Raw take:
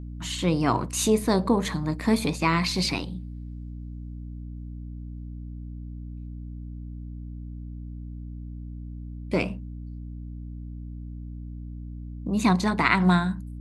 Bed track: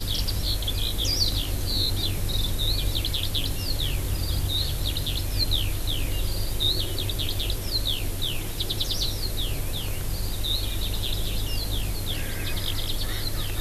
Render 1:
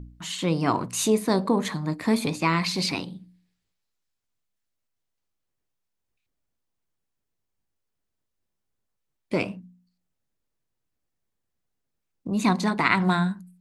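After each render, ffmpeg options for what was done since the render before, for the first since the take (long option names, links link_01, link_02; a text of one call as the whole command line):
ffmpeg -i in.wav -af "bandreject=frequency=60:width_type=h:width=4,bandreject=frequency=120:width_type=h:width=4,bandreject=frequency=180:width_type=h:width=4,bandreject=frequency=240:width_type=h:width=4,bandreject=frequency=300:width_type=h:width=4" out.wav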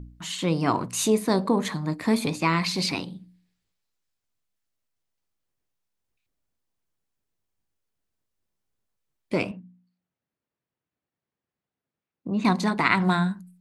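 ffmpeg -i in.wav -filter_complex "[0:a]asettb=1/sr,asplit=3[link_01][link_02][link_03];[link_01]atrim=end=9.514[link_04];[link_02]atrim=start=9.51:end=12.45,asetpts=PTS-STARTPTS,afade=type=in:duration=0.004:curve=qsin,afade=type=out:start_time=2.936:duration=0.004:curve=qsin,highpass=110,lowpass=2900[link_05];[link_03]atrim=start=12.446[link_06];[link_04][link_05]acrossfade=duration=0.004:curve1=hsin:curve2=qsin[link_07];[link_07][link_06]acrossfade=duration=0.004:curve1=qsin:curve2=hsin" out.wav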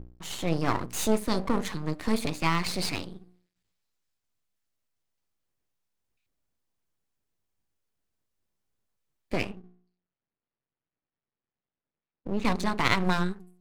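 ffmpeg -i in.wav -af "aeval=exprs='max(val(0),0)':channel_layout=same" out.wav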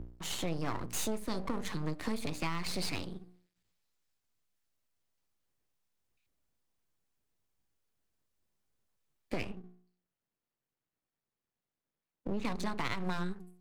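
ffmpeg -i in.wav -filter_complex "[0:a]acrossover=split=100[link_01][link_02];[link_01]alimiter=level_in=11dB:limit=-24dB:level=0:latency=1,volume=-11dB[link_03];[link_02]acompressor=threshold=-33dB:ratio=6[link_04];[link_03][link_04]amix=inputs=2:normalize=0" out.wav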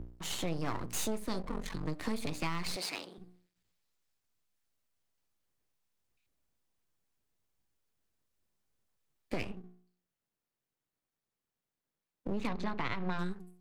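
ffmpeg -i in.wav -filter_complex "[0:a]asplit=3[link_01][link_02][link_03];[link_01]afade=type=out:start_time=1.42:duration=0.02[link_04];[link_02]aeval=exprs='val(0)*sin(2*PI*23*n/s)':channel_layout=same,afade=type=in:start_time=1.42:duration=0.02,afade=type=out:start_time=1.86:duration=0.02[link_05];[link_03]afade=type=in:start_time=1.86:duration=0.02[link_06];[link_04][link_05][link_06]amix=inputs=3:normalize=0,asettb=1/sr,asplit=3[link_07][link_08][link_09];[link_07]atrim=end=2.764[link_10];[link_08]atrim=start=2.76:end=3.18,asetpts=PTS-STARTPTS,afade=type=in:duration=0.004:curve=qsin,afade=type=out:start_time=0.416:duration=0.004:curve=qsin,highpass=410[link_11];[link_09]atrim=start=3.176[link_12];[link_10][link_11]acrossfade=duration=0.004:curve1=hsin:curve2=qsin[link_13];[link_13][link_12]acrossfade=duration=0.004:curve1=qsin:curve2=hsin,asettb=1/sr,asplit=3[link_14][link_15][link_16];[link_14]atrim=end=12.474[link_17];[link_15]atrim=start=12.47:end=13.19,asetpts=PTS-STARTPTS,afade=type=in:duration=0.004:curve=qsin,afade=type=out:start_time=0.716:duration=0.004:curve=qsin,lowpass=3500[link_18];[link_16]atrim=start=13.186[link_19];[link_17][link_18]acrossfade=duration=0.004:curve1=hsin:curve2=qsin[link_20];[link_20][link_19]acrossfade=duration=0.004:curve1=qsin:curve2=hsin" out.wav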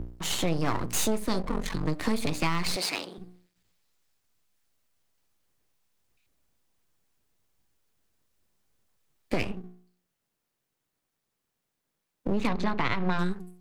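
ffmpeg -i in.wav -af "volume=8dB" out.wav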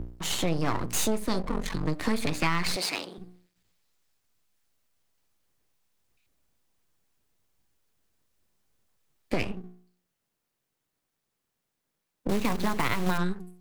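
ffmpeg -i in.wav -filter_complex "[0:a]asettb=1/sr,asplit=3[link_01][link_02][link_03];[link_01]atrim=end=2.084[link_04];[link_02]atrim=start=2.08:end=2.73,asetpts=PTS-STARTPTS,afade=type=in:duration=0.004:curve=qsin,afade=type=out:start_time=0.646:duration=0.004:curve=qsin,equalizer=frequency=1700:width_type=o:width=0.77:gain=5.5[link_05];[link_03]atrim=start=2.726[link_06];[link_04][link_05]acrossfade=duration=0.004:curve1=hsin:curve2=qsin[link_07];[link_07][link_06]acrossfade=duration=0.004:curve1=qsin:curve2=hsin,asettb=1/sr,asplit=3[link_08][link_09][link_10];[link_08]atrim=end=12.294[link_11];[link_09]atrim=start=12.29:end=13.18,asetpts=PTS-STARTPTS,afade=type=in:duration=0.004:curve=qsin,afade=type=out:start_time=0.886:duration=0.004:curve=qsin,acrusher=bits=3:mode=log:mix=0:aa=0.000001[link_12];[link_10]atrim=start=13.176[link_13];[link_11][link_12]acrossfade=duration=0.004:curve1=hsin:curve2=qsin[link_14];[link_14][link_13]acrossfade=duration=0.004:curve1=qsin:curve2=hsin" out.wav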